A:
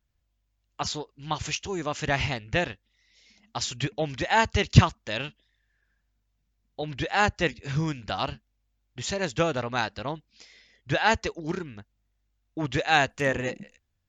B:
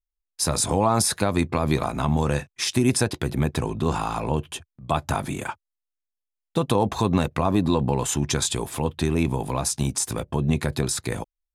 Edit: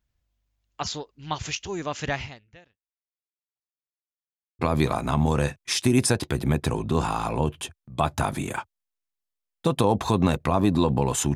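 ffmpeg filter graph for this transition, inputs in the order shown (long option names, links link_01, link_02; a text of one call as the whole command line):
ffmpeg -i cue0.wav -i cue1.wav -filter_complex "[0:a]apad=whole_dur=11.35,atrim=end=11.35,asplit=2[link_01][link_02];[link_01]atrim=end=4.04,asetpts=PTS-STARTPTS,afade=type=out:start_time=2.08:duration=1.96:curve=exp[link_03];[link_02]atrim=start=4.04:end=4.59,asetpts=PTS-STARTPTS,volume=0[link_04];[1:a]atrim=start=1.5:end=8.26,asetpts=PTS-STARTPTS,afade=type=in:duration=0.004:curve=hsin[link_05];[link_03][link_04][link_05]concat=n=3:v=0:a=1" out.wav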